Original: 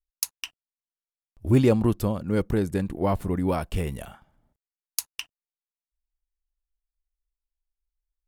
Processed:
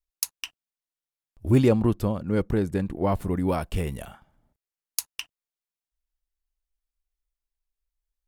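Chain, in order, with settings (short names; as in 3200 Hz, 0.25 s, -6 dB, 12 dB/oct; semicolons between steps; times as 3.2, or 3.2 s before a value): 1.68–3.12 high shelf 5100 Hz -7 dB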